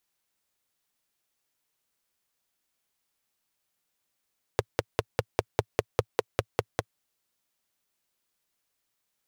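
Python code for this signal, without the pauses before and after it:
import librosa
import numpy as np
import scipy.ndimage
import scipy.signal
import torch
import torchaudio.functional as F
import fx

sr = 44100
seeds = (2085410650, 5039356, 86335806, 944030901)

y = fx.engine_single(sr, seeds[0], length_s=2.36, rpm=600, resonances_hz=(110.0, 440.0))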